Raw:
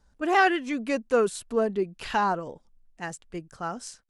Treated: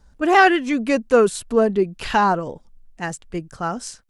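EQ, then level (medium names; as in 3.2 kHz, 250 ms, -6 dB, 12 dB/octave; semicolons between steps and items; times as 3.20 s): bass shelf 200 Hz +4.5 dB; +7.0 dB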